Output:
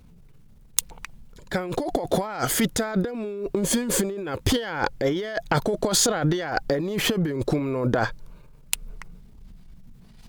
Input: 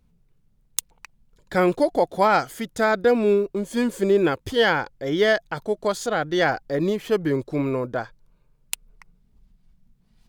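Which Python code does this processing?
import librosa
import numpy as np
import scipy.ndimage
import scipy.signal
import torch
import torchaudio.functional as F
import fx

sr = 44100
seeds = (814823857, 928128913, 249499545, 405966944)

y = fx.transient(x, sr, attack_db=-9, sustain_db=4)
y = fx.over_compress(y, sr, threshold_db=-31.0, ratio=-1.0)
y = F.gain(torch.from_numpy(y), 5.5).numpy()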